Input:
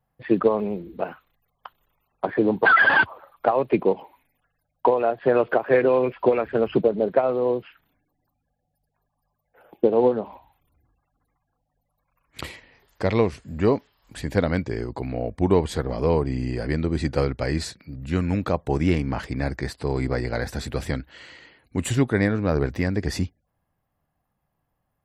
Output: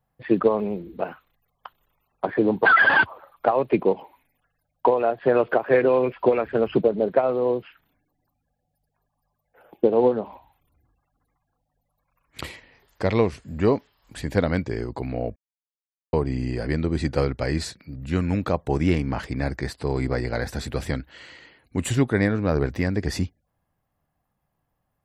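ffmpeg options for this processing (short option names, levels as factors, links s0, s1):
-filter_complex "[0:a]asplit=3[s0][s1][s2];[s0]atrim=end=15.36,asetpts=PTS-STARTPTS,afade=t=out:st=15.356:d=0.004:c=hsin[s3];[s1]atrim=start=15.36:end=16.13,asetpts=PTS-STARTPTS,volume=0[s4];[s2]atrim=start=16.13,asetpts=PTS-STARTPTS,afade=t=in:d=0.004:c=hsin[s5];[s3][s4][s5]concat=n=3:v=0:a=1"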